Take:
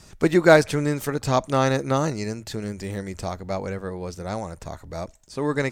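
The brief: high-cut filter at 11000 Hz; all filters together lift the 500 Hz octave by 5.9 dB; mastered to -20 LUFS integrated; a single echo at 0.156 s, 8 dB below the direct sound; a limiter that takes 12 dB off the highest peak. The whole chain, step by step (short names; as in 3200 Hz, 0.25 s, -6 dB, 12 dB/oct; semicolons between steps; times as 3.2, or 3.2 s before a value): LPF 11000 Hz; bell 500 Hz +7.5 dB; limiter -10 dBFS; echo 0.156 s -8 dB; gain +3.5 dB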